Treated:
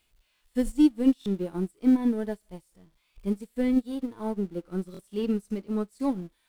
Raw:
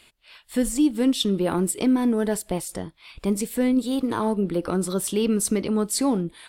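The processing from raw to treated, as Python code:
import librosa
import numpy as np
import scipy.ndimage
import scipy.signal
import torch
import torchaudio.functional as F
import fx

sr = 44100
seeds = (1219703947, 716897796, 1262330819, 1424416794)

y = x + 0.5 * 10.0 ** (-33.5 / 20.0) * np.sign(x)
y = fx.low_shelf(y, sr, hz=72.0, db=11.0)
y = fx.hpss(y, sr, part='percussive', gain_db=-10)
y = fx.buffer_glitch(y, sr, at_s=(0.34, 1.19, 4.92), block=1024, repeats=2)
y = fx.upward_expand(y, sr, threshold_db=-35.0, expansion=2.5)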